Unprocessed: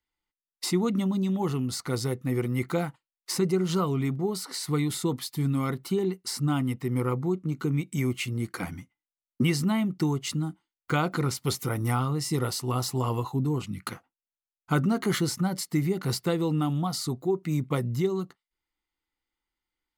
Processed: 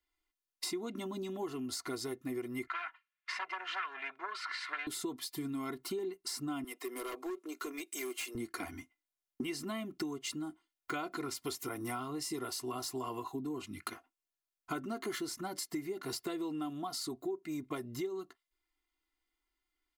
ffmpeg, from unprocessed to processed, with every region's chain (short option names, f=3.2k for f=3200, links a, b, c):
-filter_complex "[0:a]asettb=1/sr,asplit=3[a][b][c];[a]atrim=end=2.674[d];[b]atrim=start=2.67:end=4.87,asetpts=PTS-STARTPTS,afade=t=in:d=0.004:c=qsin,afade=t=out:st=2.196:d=0.004:c=qsin,aeval=exprs='0.2*sin(PI/2*2.82*val(0)/0.2)':c=same,asuperpass=centerf=1800:order=4:qfactor=1.2[e];[c]atrim=start=4.866[f];[d][e]acrossfade=d=0.004:c1=hsin:c2=qsin[g];[g][f]acrossfade=d=0.004:c1=qsin:c2=hsin,asettb=1/sr,asplit=3[h][i][j];[h]atrim=end=6.644[k];[i]atrim=start=6.64:end=8.35,asetpts=PTS-STARTPTS,afade=t=in:d=0.004:c=qsin,afade=t=out:st=1.706:d=0.004:c=qsin,highpass=f=390:w=0.5412,highpass=f=390:w=1.3066,equalizer=f=11k:t=o:w=1.9:g=6,asoftclip=type=hard:threshold=-33.5dB[l];[j]atrim=start=8.346[m];[k][l]acrossfade=d=0.004:c1=hsin:c2=qsin[n];[n][m]acrossfade=d=0.004:c1=qsin:c2=hsin,equalizer=f=110:t=o:w=0.94:g=-13,aecho=1:1:2.9:0.77,acompressor=threshold=-36dB:ratio=4,volume=-1.5dB"